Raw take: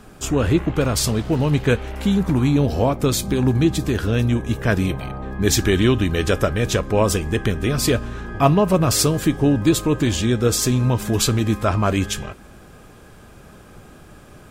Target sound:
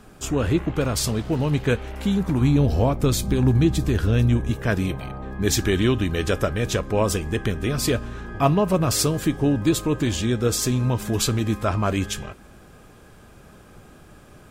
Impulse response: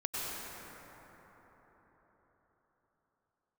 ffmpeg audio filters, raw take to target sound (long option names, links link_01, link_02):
-filter_complex "[0:a]asettb=1/sr,asplit=3[link_01][link_02][link_03];[link_01]atrim=end=2.414[link_04];[link_02]atrim=start=2.41:end=4.51,asetpts=PTS-STARTPTS,afade=type=in:duration=0.004:curve=qsin,afade=type=out:start_time=2.096:duration=0.004:curve=qsin,lowshelf=frequency=110:gain=10[link_05];[link_03]atrim=start=4.506[link_06];[link_04][link_05]acrossfade=duration=0.004:curve1=hsin:curve2=qsin[link_07];[link_07][link_06]acrossfade=duration=0.004:curve1=qsin:curve2=hsin,volume=-3.5dB"